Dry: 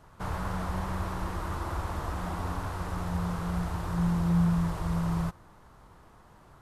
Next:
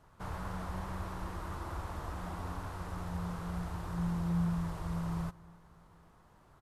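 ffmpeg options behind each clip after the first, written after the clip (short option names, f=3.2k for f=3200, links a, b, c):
-filter_complex "[0:a]asplit=2[a][b];[b]adelay=273,lowpass=f=2k:p=1,volume=-22dB,asplit=2[c][d];[d]adelay=273,lowpass=f=2k:p=1,volume=0.52,asplit=2[e][f];[f]adelay=273,lowpass=f=2k:p=1,volume=0.52,asplit=2[g][h];[h]adelay=273,lowpass=f=2k:p=1,volume=0.52[i];[a][c][e][g][i]amix=inputs=5:normalize=0,volume=-7dB"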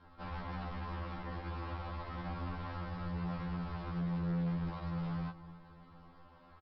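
-af "aecho=1:1:3.8:0.99,aresample=11025,asoftclip=type=tanh:threshold=-38.5dB,aresample=44100,afftfilt=real='re*2*eq(mod(b,4),0)':imag='im*2*eq(mod(b,4),0)':win_size=2048:overlap=0.75,volume=3dB"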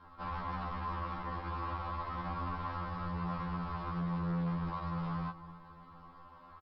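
-af "equalizer=f=1.1k:t=o:w=0.58:g=10"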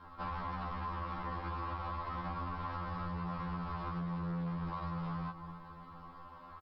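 -af "acompressor=threshold=-39dB:ratio=6,volume=3dB"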